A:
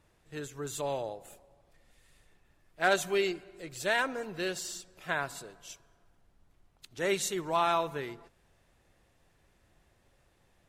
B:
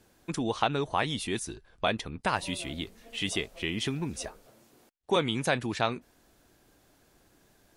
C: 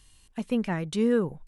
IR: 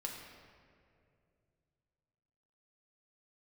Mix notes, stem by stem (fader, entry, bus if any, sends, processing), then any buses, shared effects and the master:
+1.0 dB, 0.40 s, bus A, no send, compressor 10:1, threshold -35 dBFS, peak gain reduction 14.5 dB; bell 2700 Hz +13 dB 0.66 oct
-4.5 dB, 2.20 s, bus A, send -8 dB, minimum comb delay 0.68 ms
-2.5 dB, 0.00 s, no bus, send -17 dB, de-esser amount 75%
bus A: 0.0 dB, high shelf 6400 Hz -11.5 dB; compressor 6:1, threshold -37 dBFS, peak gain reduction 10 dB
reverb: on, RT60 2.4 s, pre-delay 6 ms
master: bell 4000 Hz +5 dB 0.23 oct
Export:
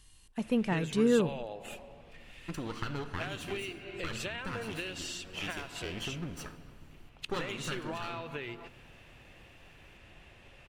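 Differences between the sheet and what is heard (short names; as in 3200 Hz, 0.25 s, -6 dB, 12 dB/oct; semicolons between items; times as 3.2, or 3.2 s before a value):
stem A +1.0 dB -> +10.5 dB; master: missing bell 4000 Hz +5 dB 0.23 oct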